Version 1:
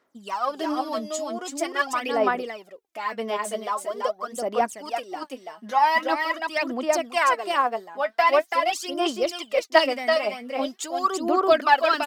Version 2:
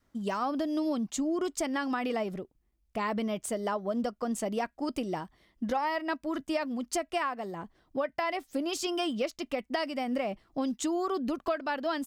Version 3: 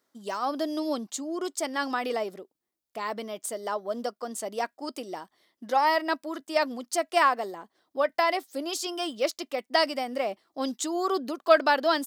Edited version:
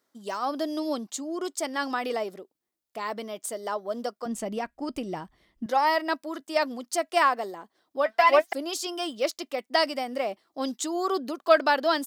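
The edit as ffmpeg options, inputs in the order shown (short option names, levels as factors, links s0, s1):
-filter_complex "[2:a]asplit=3[s0][s1][s2];[s0]atrim=end=4.262[s3];[1:a]atrim=start=4.258:end=5.662[s4];[s1]atrim=start=5.658:end=8.062[s5];[0:a]atrim=start=8.058:end=8.532[s6];[s2]atrim=start=8.528[s7];[s3][s4]acrossfade=d=0.004:c1=hsin:c2=hsin[s8];[s8][s5]acrossfade=d=0.004:c1=hsin:c2=hsin[s9];[s9][s6]acrossfade=d=0.004:c1=hsin:c2=hsin[s10];[s10][s7]acrossfade=d=0.004:c1=hsin:c2=hsin"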